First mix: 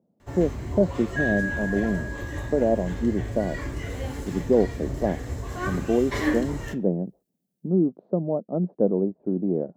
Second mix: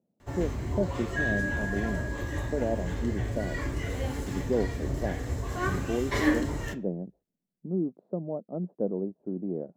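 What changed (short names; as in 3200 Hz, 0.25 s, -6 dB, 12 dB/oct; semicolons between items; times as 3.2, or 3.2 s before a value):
speech -8.0 dB; second sound: add tilt -4 dB/oct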